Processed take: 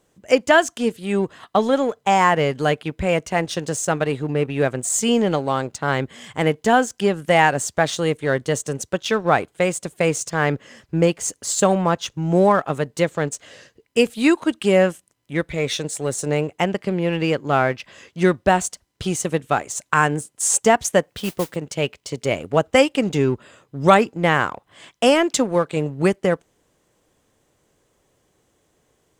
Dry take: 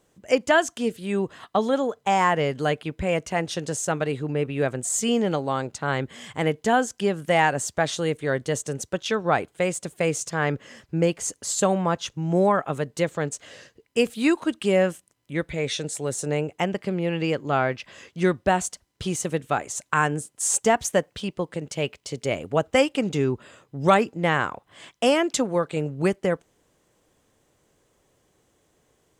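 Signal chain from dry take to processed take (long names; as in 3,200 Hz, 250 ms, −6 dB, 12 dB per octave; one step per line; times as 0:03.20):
in parallel at −5 dB: dead-zone distortion −34.5 dBFS
0:21.09–0:21.56: on the sum: noise that follows the level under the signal 12 dB
level +1 dB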